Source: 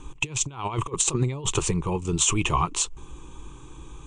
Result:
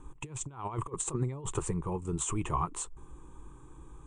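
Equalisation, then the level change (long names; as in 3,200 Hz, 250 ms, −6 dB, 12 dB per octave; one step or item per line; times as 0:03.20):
flat-topped bell 3,900 Hz −12.5 dB
−7.5 dB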